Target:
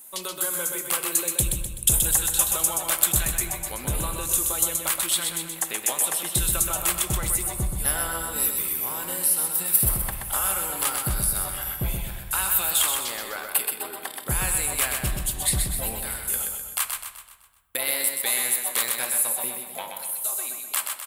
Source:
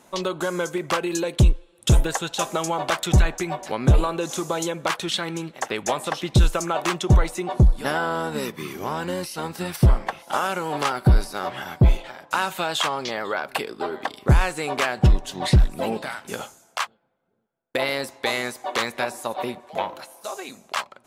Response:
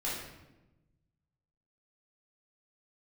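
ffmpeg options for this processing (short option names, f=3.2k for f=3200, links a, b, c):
-filter_complex "[0:a]tiltshelf=f=1.5k:g=-6.5,aecho=1:1:127|254|381|508|635|762:0.562|0.264|0.124|0.0584|0.0274|0.0129,asplit=2[a][b];[1:a]atrim=start_sample=2205,asetrate=28224,aresample=44100[c];[b][c]afir=irnorm=-1:irlink=0,volume=-18dB[d];[a][d]amix=inputs=2:normalize=0,aexciter=amount=15.2:drive=1:freq=8.4k,volume=-7.5dB"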